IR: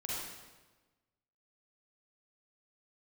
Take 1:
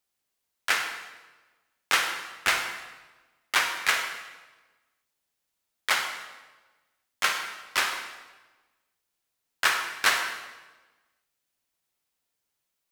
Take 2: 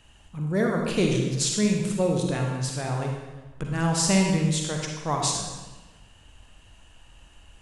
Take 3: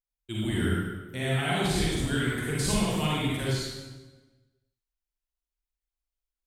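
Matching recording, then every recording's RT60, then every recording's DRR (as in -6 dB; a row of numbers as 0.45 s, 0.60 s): 3; 1.3 s, 1.3 s, 1.3 s; 5.0 dB, 0.5 dB, -6.5 dB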